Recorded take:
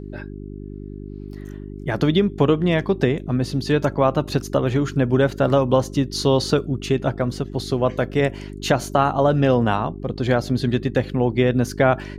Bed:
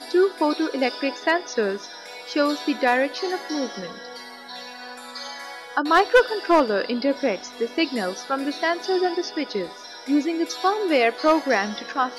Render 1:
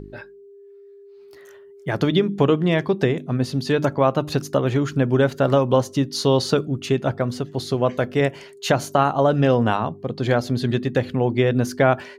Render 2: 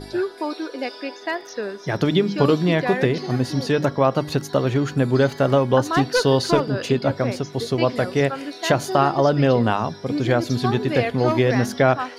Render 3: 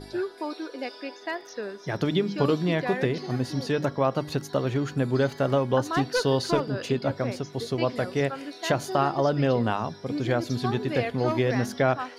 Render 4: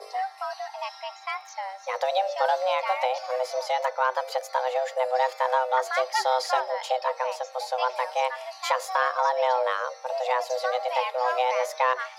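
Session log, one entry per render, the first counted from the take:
de-hum 50 Hz, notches 7
add bed -5.5 dB
gain -6 dB
soft clip -10.5 dBFS, distortion -26 dB; frequency shift +380 Hz

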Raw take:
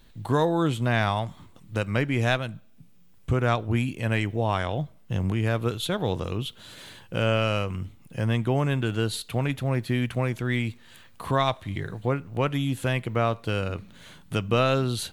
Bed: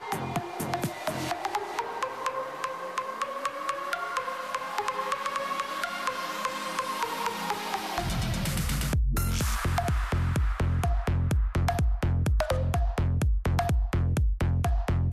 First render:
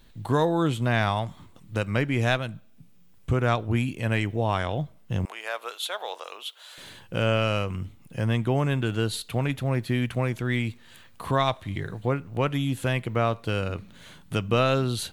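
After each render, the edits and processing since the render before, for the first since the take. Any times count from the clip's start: 5.25–6.78 HPF 620 Hz 24 dB/oct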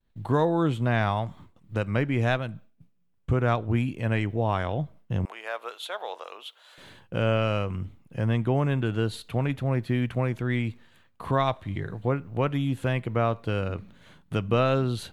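expander -43 dBFS; high shelf 3300 Hz -11 dB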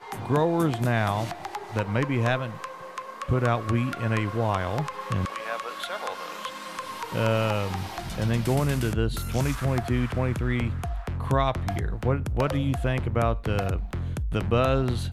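add bed -4.5 dB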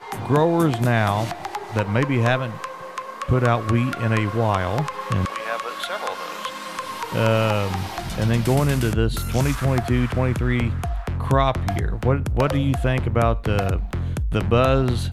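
gain +5 dB

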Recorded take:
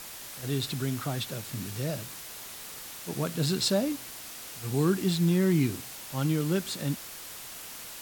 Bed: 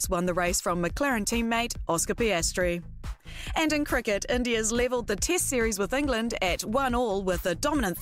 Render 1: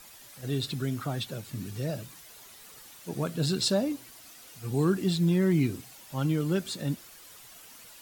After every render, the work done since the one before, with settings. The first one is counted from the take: denoiser 10 dB, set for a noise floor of -43 dBFS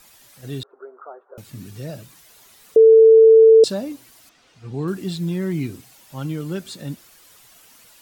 0.63–1.38 Chebyshev band-pass 390–1400 Hz, order 4; 2.76–3.64 bleep 446 Hz -6 dBFS; 4.29–4.88 air absorption 130 m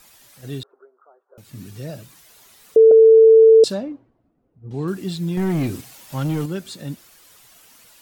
0.55–1.6 dip -14.5 dB, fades 0.34 s; 2.91–4.71 low-pass opened by the level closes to 320 Hz, open at -11 dBFS; 5.37–6.46 sample leveller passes 2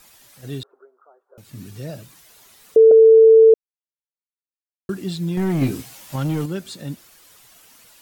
3.54–4.89 mute; 5.6–6.16 doubler 15 ms -3 dB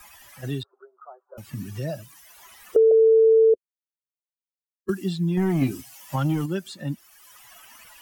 per-bin expansion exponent 1.5; three-band squash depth 70%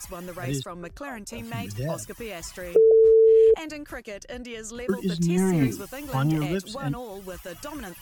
add bed -10.5 dB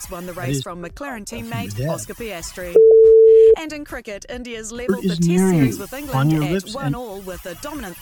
gain +6.5 dB

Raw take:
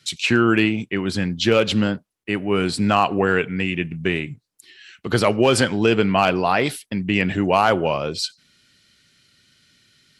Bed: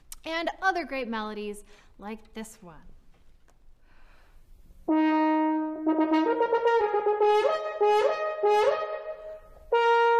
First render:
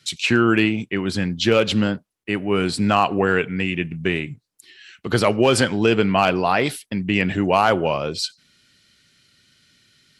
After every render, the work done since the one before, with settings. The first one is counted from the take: nothing audible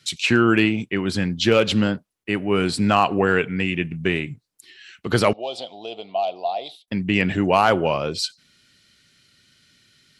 5.33–6.88 double band-pass 1600 Hz, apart 2.4 oct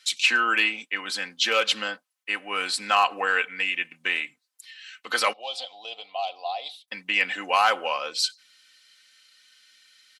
HPF 1000 Hz 12 dB/oct; comb 3.9 ms, depth 59%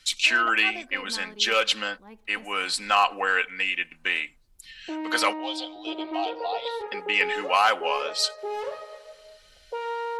add bed -9.5 dB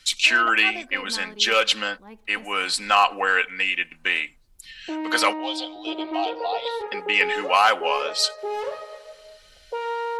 gain +3 dB

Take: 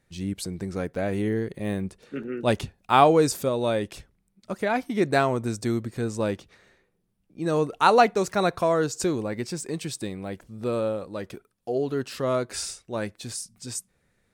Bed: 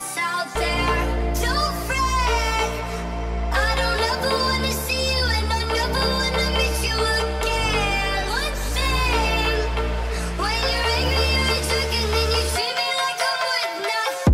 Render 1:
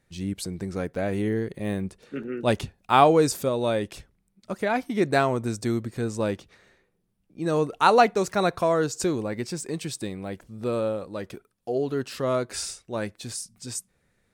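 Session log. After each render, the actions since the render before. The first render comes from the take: nothing audible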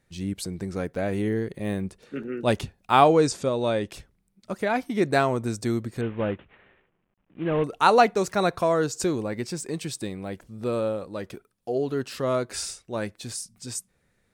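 3.08–3.88 LPF 8200 Hz 24 dB/oct; 6.01–7.64 CVSD 16 kbps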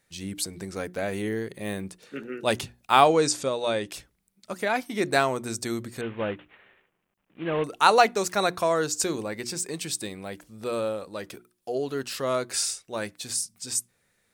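tilt +2 dB/oct; notches 60/120/180/240/300/360 Hz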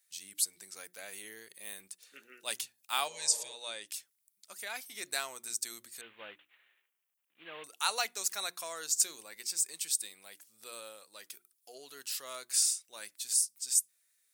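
3.1–3.52 spectral repair 220–1500 Hz after; differentiator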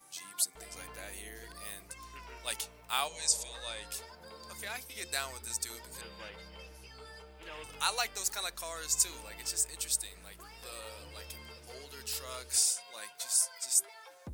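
add bed -29.5 dB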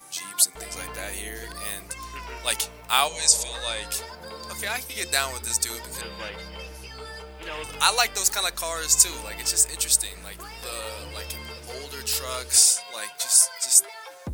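gain +11.5 dB; limiter -2 dBFS, peak gain reduction 1.5 dB

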